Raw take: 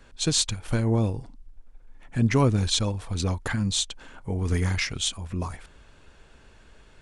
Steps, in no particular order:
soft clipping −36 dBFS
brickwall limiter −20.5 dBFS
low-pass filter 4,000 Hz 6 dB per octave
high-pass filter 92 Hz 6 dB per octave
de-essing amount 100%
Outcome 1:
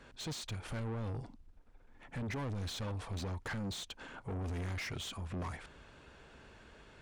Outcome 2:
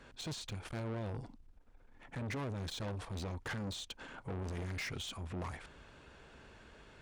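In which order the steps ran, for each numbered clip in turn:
brickwall limiter, then high-pass filter, then soft clipping, then low-pass filter, then de-essing
brickwall limiter, then low-pass filter, then de-essing, then soft clipping, then high-pass filter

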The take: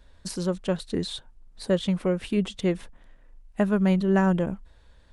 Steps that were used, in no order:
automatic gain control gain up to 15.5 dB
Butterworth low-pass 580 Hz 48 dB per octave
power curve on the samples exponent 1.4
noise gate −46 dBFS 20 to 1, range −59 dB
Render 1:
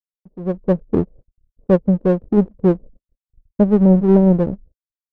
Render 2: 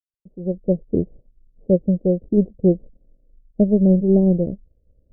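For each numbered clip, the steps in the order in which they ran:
Butterworth low-pass, then noise gate, then automatic gain control, then power curve on the samples
automatic gain control, then noise gate, then power curve on the samples, then Butterworth low-pass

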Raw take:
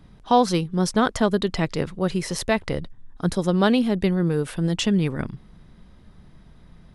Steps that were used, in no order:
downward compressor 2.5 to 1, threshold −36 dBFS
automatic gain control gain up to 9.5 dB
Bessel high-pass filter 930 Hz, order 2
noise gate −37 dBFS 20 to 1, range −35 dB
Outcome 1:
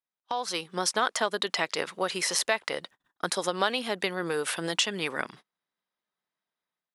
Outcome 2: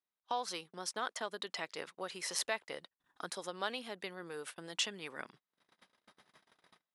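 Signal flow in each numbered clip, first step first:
noise gate, then Bessel high-pass filter, then downward compressor, then automatic gain control
automatic gain control, then downward compressor, then noise gate, then Bessel high-pass filter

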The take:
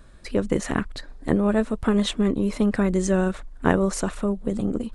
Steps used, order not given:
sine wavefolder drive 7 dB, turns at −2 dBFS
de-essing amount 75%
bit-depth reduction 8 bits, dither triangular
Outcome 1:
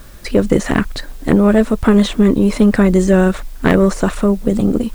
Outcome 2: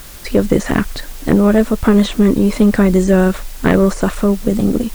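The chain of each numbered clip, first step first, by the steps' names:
de-essing, then sine wavefolder, then bit-depth reduction
bit-depth reduction, then de-essing, then sine wavefolder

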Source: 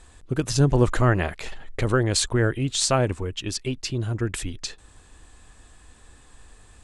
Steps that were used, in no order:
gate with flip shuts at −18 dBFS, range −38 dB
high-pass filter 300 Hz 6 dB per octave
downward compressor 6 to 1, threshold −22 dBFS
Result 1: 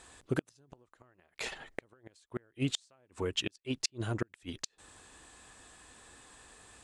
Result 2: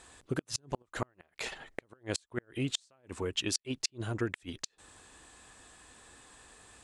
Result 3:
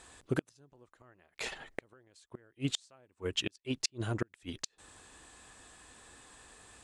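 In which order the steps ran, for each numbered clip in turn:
high-pass filter, then downward compressor, then gate with flip
downward compressor, then high-pass filter, then gate with flip
high-pass filter, then gate with flip, then downward compressor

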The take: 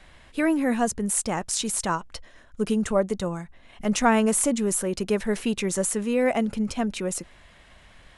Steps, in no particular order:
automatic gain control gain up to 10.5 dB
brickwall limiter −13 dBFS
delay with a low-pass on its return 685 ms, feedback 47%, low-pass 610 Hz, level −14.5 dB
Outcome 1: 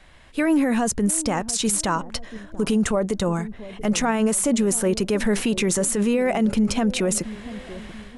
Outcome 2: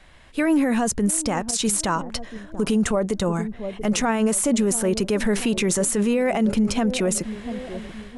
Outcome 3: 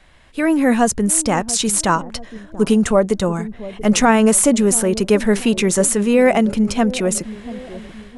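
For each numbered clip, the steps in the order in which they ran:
automatic gain control, then brickwall limiter, then delay with a low-pass on its return
automatic gain control, then delay with a low-pass on its return, then brickwall limiter
brickwall limiter, then automatic gain control, then delay with a low-pass on its return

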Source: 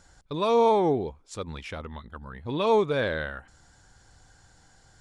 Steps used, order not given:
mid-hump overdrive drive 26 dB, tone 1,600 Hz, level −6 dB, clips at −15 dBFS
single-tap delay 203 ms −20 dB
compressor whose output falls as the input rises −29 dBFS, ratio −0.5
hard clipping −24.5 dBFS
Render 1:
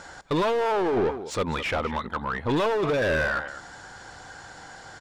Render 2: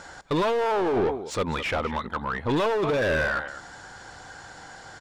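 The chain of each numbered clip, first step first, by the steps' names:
hard clipping, then single-tap delay, then compressor whose output falls as the input rises, then mid-hump overdrive
single-tap delay, then hard clipping, then compressor whose output falls as the input rises, then mid-hump overdrive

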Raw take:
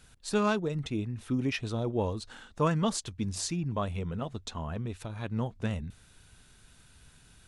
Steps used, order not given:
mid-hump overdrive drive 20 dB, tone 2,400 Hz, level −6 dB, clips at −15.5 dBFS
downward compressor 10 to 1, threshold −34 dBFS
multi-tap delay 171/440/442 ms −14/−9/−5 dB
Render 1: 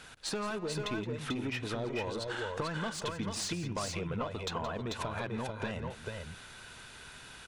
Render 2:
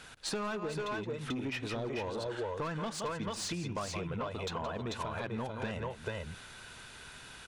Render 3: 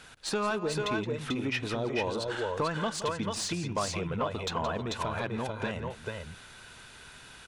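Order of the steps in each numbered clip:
mid-hump overdrive, then downward compressor, then multi-tap delay
multi-tap delay, then mid-hump overdrive, then downward compressor
downward compressor, then multi-tap delay, then mid-hump overdrive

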